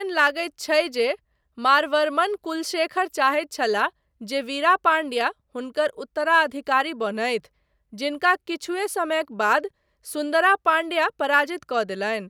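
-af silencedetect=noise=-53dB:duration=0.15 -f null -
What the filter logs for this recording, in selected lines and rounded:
silence_start: 1.16
silence_end: 1.57 | silence_duration: 0.41
silence_start: 3.90
silence_end: 4.21 | silence_duration: 0.30
silence_start: 5.33
silence_end: 5.55 | silence_duration: 0.22
silence_start: 7.47
silence_end: 7.92 | silence_duration: 0.45
silence_start: 9.69
silence_end: 10.03 | silence_duration: 0.35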